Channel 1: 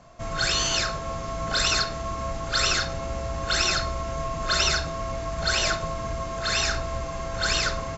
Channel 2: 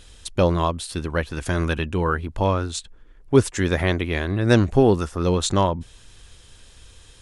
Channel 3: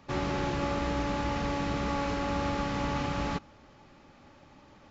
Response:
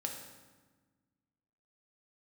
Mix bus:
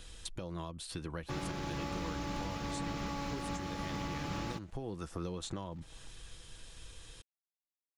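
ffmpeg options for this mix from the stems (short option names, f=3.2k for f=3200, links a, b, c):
-filter_complex "[1:a]acompressor=threshold=-31dB:ratio=3,volume=-4dB[a];[2:a]aeval=exprs='sgn(val(0))*max(abs(val(0))-0.00224,0)':c=same,adelay=1200,volume=1.5dB[b];[a][b]amix=inputs=2:normalize=0,aecho=1:1:6.1:0.31,acrossover=split=300|3400|7700[c][d][e][f];[c]acompressor=threshold=-36dB:ratio=4[g];[d]acompressor=threshold=-39dB:ratio=4[h];[e]acompressor=threshold=-47dB:ratio=4[i];[f]acompressor=threshold=-50dB:ratio=4[j];[g][h][i][j]amix=inputs=4:normalize=0,alimiter=level_in=4dB:limit=-24dB:level=0:latency=1:release=402,volume=-4dB"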